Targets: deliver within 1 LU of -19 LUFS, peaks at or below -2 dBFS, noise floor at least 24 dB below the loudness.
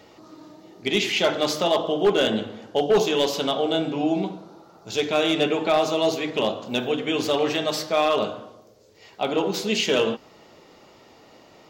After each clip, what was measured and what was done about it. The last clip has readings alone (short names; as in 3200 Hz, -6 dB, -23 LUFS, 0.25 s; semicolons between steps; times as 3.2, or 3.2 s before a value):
clipped 0.3%; flat tops at -12.5 dBFS; loudness -23.0 LUFS; peak -12.5 dBFS; loudness target -19.0 LUFS
-> clip repair -12.5 dBFS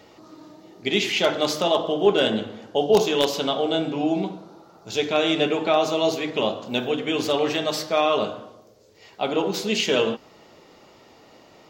clipped 0.0%; loudness -23.0 LUFS; peak -3.5 dBFS; loudness target -19.0 LUFS
-> gain +4 dB; limiter -2 dBFS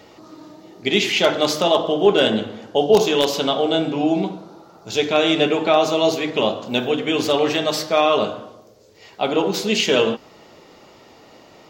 loudness -19.0 LUFS; peak -2.0 dBFS; noise floor -48 dBFS